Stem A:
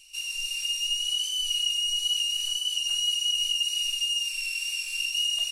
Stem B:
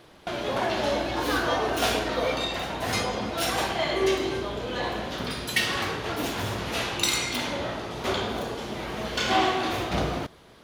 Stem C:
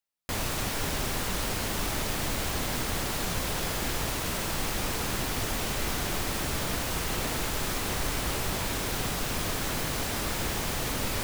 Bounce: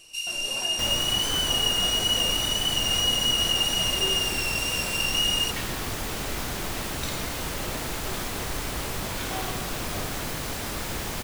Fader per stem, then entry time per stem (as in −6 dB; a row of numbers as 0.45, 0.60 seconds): +2.0, −12.5, −1.0 decibels; 0.00, 0.00, 0.50 seconds